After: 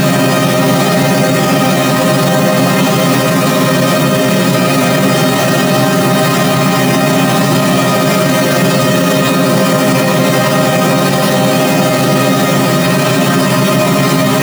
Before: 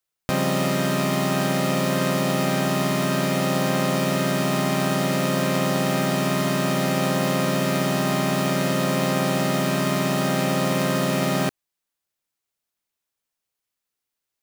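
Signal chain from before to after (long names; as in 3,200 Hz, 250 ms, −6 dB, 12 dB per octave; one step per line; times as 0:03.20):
extreme stretch with random phases 4.2×, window 0.10 s, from 0:06.61
boost into a limiter +20 dB
level −1 dB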